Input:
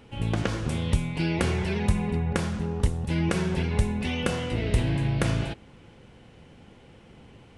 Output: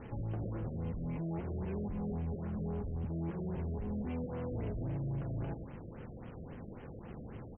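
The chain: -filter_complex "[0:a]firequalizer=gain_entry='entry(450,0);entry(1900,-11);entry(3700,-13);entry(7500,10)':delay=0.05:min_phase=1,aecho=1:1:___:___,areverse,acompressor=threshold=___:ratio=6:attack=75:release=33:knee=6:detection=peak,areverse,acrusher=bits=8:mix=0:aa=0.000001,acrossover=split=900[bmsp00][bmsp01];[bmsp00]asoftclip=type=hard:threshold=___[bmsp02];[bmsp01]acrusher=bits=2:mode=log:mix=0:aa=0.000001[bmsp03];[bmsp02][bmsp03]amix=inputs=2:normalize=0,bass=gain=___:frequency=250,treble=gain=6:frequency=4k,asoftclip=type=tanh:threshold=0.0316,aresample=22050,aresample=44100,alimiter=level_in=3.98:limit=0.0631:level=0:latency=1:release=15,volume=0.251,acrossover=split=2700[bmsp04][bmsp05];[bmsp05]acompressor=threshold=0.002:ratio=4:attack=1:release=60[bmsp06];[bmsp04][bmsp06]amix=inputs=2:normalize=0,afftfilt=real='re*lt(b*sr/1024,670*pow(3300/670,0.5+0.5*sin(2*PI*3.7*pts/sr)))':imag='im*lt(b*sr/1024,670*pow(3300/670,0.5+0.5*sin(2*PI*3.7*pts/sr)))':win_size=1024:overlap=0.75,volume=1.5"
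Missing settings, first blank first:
101, 0.126, 0.0126, 0.0282, 1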